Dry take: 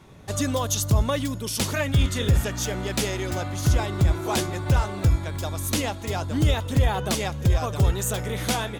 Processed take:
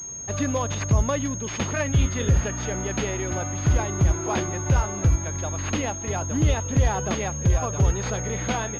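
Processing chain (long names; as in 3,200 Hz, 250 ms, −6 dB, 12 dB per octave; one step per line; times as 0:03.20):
switching amplifier with a slow clock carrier 6,500 Hz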